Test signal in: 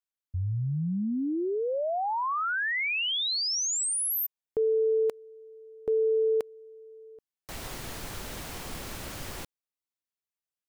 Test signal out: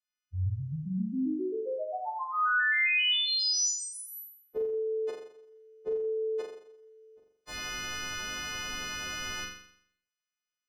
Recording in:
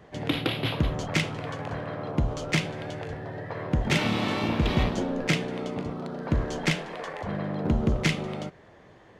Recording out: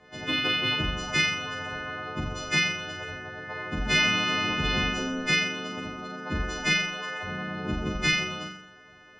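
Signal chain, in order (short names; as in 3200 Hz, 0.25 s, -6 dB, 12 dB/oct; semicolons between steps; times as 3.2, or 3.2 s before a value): frequency quantiser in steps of 3 st; air absorption 110 m; notches 60/120/180 Hz; on a send: flutter echo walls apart 7.3 m, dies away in 0.66 s; on the sum: gain -3.5 dB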